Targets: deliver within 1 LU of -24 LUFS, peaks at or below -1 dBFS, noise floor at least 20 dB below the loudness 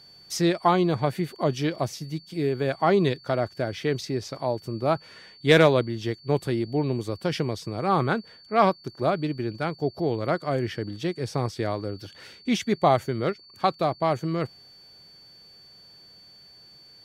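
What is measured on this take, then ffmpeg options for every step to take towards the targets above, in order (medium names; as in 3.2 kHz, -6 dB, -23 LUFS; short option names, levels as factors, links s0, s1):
steady tone 4.5 kHz; tone level -49 dBFS; loudness -26.0 LUFS; peak level -5.0 dBFS; loudness target -24.0 LUFS
-> -af "bandreject=f=4500:w=30"
-af "volume=1.26"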